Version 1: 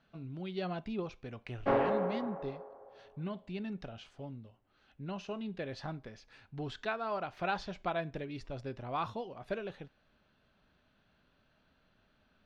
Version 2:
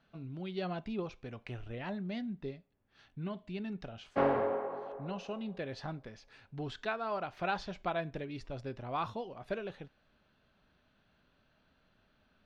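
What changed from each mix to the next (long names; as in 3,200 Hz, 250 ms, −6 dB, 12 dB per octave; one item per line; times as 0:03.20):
background: entry +2.50 s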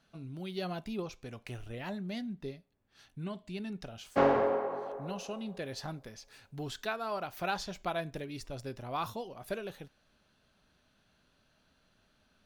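background +3.5 dB
master: remove low-pass filter 3,300 Hz 12 dB per octave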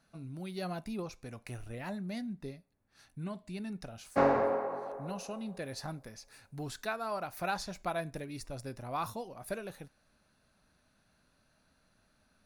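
master: add thirty-one-band graphic EQ 400 Hz −4 dB, 3,150 Hz −10 dB, 10,000 Hz +9 dB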